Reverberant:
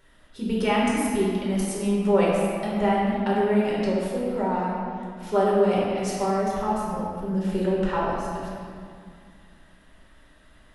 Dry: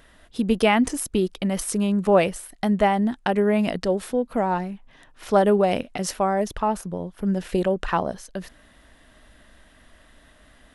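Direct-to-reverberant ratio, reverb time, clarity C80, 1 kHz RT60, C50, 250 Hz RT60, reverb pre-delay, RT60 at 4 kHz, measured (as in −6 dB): −6.0 dB, 2.2 s, 0.0 dB, 2.2 s, −2.0 dB, 2.8 s, 5 ms, 1.5 s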